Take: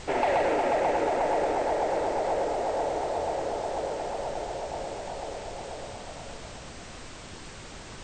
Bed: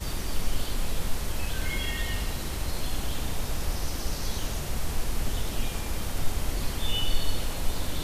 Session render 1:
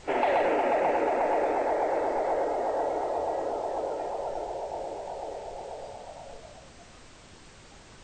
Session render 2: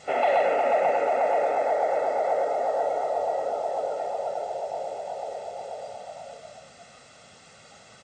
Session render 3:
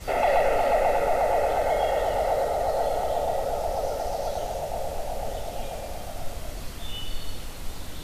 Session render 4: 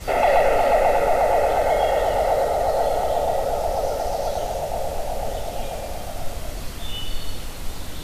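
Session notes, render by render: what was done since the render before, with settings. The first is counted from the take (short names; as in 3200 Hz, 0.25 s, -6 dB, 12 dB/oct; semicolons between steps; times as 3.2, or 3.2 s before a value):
noise print and reduce 8 dB
HPF 180 Hz 12 dB/oct; comb 1.5 ms, depth 72%
add bed -6.5 dB
gain +4.5 dB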